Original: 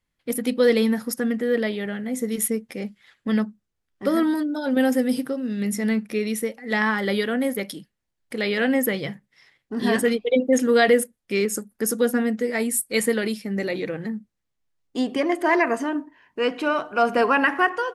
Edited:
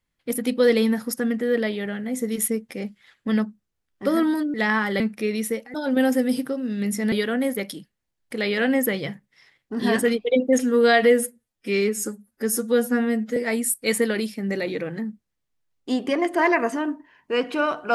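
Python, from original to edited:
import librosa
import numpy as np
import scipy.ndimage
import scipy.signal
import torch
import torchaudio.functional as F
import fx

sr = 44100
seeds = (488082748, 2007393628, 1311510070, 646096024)

y = fx.edit(x, sr, fx.swap(start_s=4.54, length_s=1.38, other_s=6.66, other_length_s=0.46),
    fx.stretch_span(start_s=10.59, length_s=1.85, factor=1.5), tone=tone)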